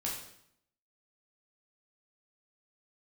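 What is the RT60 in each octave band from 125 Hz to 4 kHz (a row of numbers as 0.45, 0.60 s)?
0.85, 0.85, 0.70, 0.70, 0.65, 0.65 s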